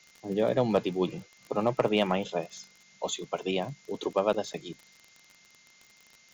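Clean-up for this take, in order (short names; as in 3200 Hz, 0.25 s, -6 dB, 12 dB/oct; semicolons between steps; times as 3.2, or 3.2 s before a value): clip repair -14.5 dBFS; de-click; notch 2100 Hz, Q 30; noise print and reduce 14 dB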